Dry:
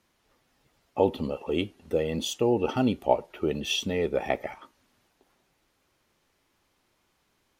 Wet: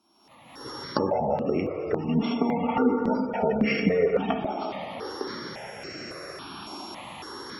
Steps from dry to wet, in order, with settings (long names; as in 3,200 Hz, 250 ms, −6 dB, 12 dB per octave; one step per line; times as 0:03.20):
samples sorted by size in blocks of 8 samples
camcorder AGC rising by 43 dB per second
high-pass filter 160 Hz 12 dB per octave
high-shelf EQ 6,000 Hz −7 dB
convolution reverb RT60 3.2 s, pre-delay 17 ms, DRR 1.5 dB
treble cut that deepens with the level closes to 2,000 Hz, closed at −22.5 dBFS
dynamic equaliser 360 Hz, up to −6 dB, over −33 dBFS, Q 0.81
gate on every frequency bin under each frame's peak −30 dB strong
0:02.07–0:04.40: comb filter 4.3 ms, depth 93%
step-sequenced phaser 3.6 Hz 500–3,500 Hz
level +5 dB